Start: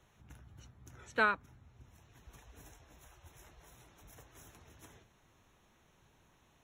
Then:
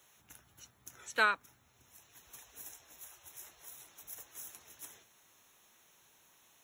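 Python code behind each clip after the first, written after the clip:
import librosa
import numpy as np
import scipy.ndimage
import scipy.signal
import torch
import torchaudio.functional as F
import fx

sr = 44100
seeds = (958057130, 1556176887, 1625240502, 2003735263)

y = fx.riaa(x, sr, side='recording')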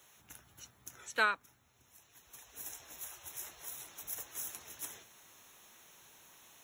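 y = fx.rider(x, sr, range_db=4, speed_s=0.5)
y = y * 10.0 ** (2.0 / 20.0)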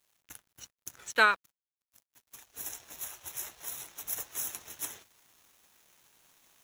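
y = np.sign(x) * np.maximum(np.abs(x) - 10.0 ** (-57.5 / 20.0), 0.0)
y = y * 10.0 ** (7.0 / 20.0)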